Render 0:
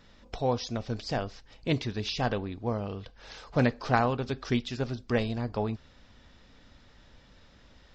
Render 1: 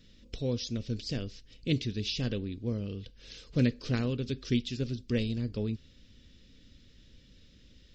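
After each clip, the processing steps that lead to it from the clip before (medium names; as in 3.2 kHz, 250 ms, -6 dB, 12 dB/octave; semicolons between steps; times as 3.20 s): FFT filter 280 Hz 0 dB, 520 Hz -6 dB, 770 Hz -25 dB, 2.9 kHz 0 dB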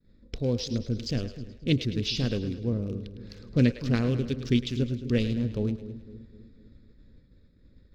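local Wiener filter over 15 samples; two-band feedback delay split 440 Hz, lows 252 ms, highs 106 ms, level -12 dB; expander -52 dBFS; trim +4.5 dB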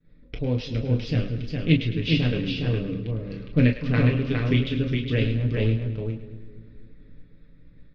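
resonant low-pass 2.5 kHz, resonance Q 1.7; delay 411 ms -3.5 dB; on a send at -1 dB: reverberation, pre-delay 7 ms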